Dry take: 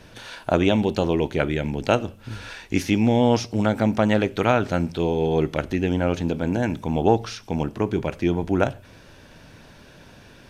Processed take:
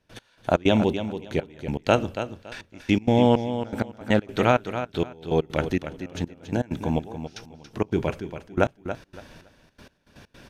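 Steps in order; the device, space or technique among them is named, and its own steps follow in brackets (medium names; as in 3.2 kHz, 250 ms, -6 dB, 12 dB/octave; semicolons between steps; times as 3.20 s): trance gate with a delay (trance gate ".x...x.xxx..." 161 bpm -24 dB; feedback delay 281 ms, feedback 22%, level -10 dB)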